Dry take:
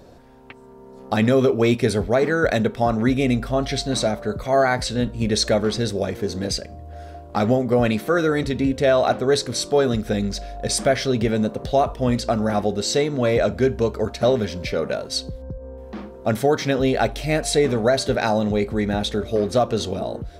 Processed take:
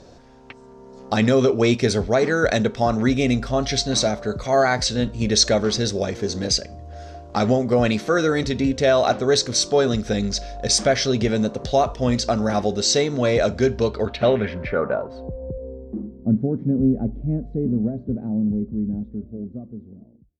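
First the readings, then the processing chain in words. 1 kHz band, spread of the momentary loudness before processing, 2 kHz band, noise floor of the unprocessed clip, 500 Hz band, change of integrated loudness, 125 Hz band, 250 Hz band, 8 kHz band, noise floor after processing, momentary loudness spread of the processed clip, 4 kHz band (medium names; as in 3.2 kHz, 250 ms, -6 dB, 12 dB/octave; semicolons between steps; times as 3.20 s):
-1.0 dB, 8 LU, -0.5 dB, -42 dBFS, -1.0 dB, +0.5 dB, 0.0 dB, +0.5 dB, +4.5 dB, -46 dBFS, 15 LU, +3.0 dB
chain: fade out at the end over 3.52 s; low-pass sweep 6.1 kHz -> 230 Hz, 13.66–16.16 s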